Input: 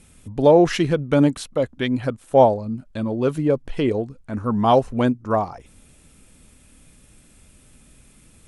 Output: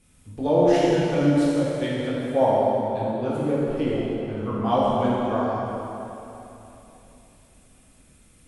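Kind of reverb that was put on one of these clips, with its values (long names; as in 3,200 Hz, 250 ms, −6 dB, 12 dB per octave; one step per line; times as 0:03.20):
dense smooth reverb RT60 3.2 s, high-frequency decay 0.8×, DRR −8 dB
level −11.5 dB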